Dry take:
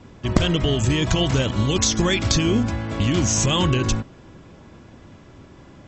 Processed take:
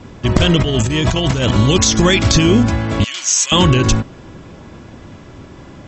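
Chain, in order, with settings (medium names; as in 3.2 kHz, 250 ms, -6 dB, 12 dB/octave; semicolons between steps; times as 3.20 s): 0.59–1.57 s: compressor with a negative ratio -24 dBFS, ratio -1; 3.04–3.52 s: Bessel high-pass 2.8 kHz, order 2; loudness maximiser +9.5 dB; trim -1 dB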